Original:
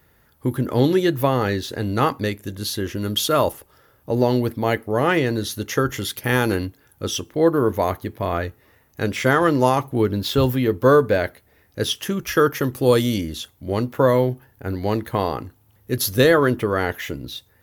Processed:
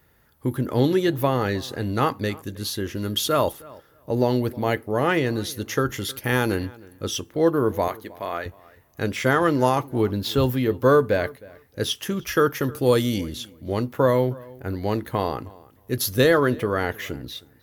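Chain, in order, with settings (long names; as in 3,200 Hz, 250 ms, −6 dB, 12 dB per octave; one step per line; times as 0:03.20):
0:07.88–0:08.46: high-pass filter 610 Hz 6 dB per octave
feedback echo with a low-pass in the loop 313 ms, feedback 16%, low-pass 3,100 Hz, level −22 dB
level −2.5 dB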